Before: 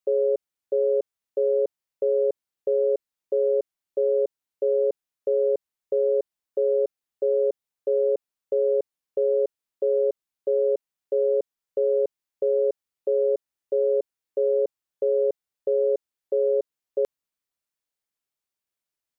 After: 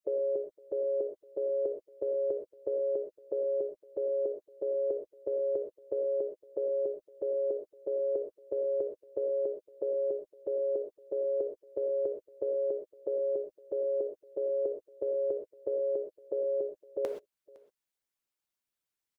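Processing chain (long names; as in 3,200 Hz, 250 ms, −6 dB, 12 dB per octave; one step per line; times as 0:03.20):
single-tap delay 510 ms −24 dB
reverb whose tail is shaped and stops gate 150 ms flat, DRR 1.5 dB
harmonic and percussive parts rebalanced harmonic −11 dB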